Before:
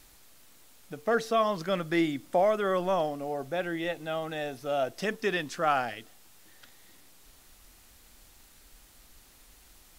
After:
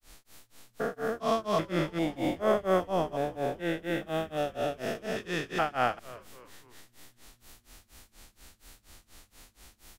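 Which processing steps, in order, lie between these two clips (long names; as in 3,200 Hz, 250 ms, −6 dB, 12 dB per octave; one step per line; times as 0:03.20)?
spectrum averaged block by block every 400 ms
granular cloud 247 ms, grains 4.2 per second, spray 39 ms, pitch spread up and down by 0 semitones
echo with shifted repeats 281 ms, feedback 44%, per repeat −120 Hz, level −19 dB
level +7.5 dB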